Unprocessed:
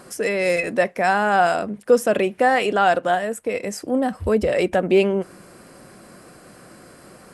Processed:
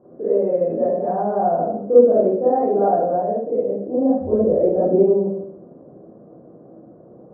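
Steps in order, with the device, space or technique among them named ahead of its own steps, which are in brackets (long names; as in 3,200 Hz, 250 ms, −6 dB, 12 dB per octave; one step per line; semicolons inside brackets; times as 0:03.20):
next room (low-pass filter 620 Hz 24 dB per octave; convolution reverb RT60 0.75 s, pre-delay 28 ms, DRR −11 dB)
high-pass filter 270 Hz 6 dB per octave
level −5 dB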